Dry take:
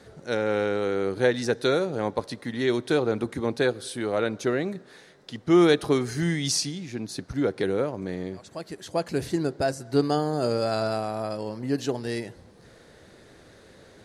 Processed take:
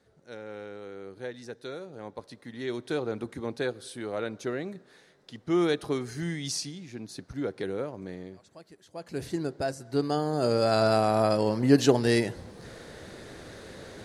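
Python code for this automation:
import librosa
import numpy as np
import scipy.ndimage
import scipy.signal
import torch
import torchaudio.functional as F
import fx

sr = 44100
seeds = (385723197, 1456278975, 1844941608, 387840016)

y = fx.gain(x, sr, db=fx.line((1.73, -16.0), (2.98, -7.0), (8.08, -7.0), (8.9, -17.0), (9.22, -5.0), (10.0, -5.0), (11.17, 7.0)))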